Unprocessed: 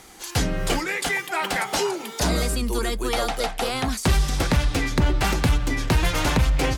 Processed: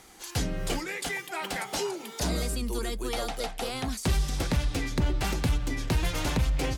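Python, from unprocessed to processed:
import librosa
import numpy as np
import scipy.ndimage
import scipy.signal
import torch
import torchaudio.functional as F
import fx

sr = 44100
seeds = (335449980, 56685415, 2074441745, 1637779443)

y = fx.dynamic_eq(x, sr, hz=1300.0, q=0.71, threshold_db=-36.0, ratio=4.0, max_db=-4)
y = y * librosa.db_to_amplitude(-6.0)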